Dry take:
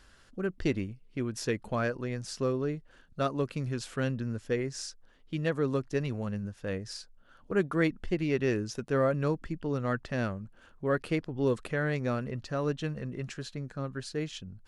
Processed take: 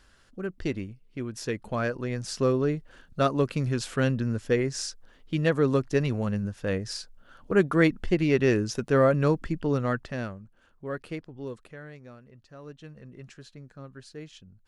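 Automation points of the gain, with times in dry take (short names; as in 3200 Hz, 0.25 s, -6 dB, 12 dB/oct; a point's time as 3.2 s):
1.36 s -1 dB
2.5 s +6 dB
9.73 s +6 dB
10.44 s -5.5 dB
11.13 s -5.5 dB
12.22 s -18 dB
13.21 s -8 dB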